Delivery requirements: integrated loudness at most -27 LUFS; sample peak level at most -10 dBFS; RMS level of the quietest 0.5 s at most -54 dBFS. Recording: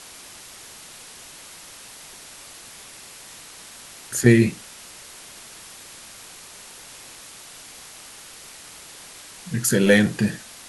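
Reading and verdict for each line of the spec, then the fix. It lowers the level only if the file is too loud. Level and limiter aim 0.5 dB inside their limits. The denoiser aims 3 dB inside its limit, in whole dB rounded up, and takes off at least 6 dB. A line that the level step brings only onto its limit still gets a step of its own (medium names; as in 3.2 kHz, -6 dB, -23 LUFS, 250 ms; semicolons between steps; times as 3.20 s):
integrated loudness -19.5 LUFS: fail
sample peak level -2.0 dBFS: fail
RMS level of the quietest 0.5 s -43 dBFS: fail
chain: noise reduction 6 dB, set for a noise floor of -43 dBFS; trim -8 dB; peak limiter -10.5 dBFS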